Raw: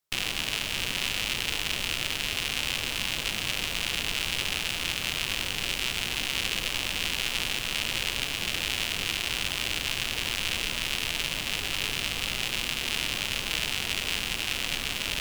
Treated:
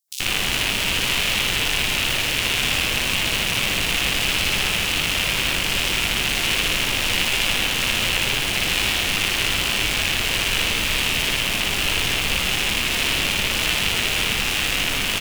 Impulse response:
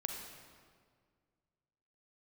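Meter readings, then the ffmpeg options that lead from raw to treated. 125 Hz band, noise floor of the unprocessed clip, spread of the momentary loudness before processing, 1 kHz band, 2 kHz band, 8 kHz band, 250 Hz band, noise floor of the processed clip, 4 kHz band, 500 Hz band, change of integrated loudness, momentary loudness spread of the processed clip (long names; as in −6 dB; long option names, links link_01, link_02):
+10.0 dB, −33 dBFS, 1 LU, +10.0 dB, +9.0 dB, +8.5 dB, +10.0 dB, −23 dBFS, +8.0 dB, +10.0 dB, +8.5 dB, 1 LU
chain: -filter_complex "[0:a]acrossover=split=4400[link_01][link_02];[link_01]adelay=80[link_03];[link_03][link_02]amix=inputs=2:normalize=0,asplit=2[link_04][link_05];[1:a]atrim=start_sample=2205,adelay=59[link_06];[link_05][link_06]afir=irnorm=-1:irlink=0,volume=1dB[link_07];[link_04][link_07]amix=inputs=2:normalize=0,volume=6dB"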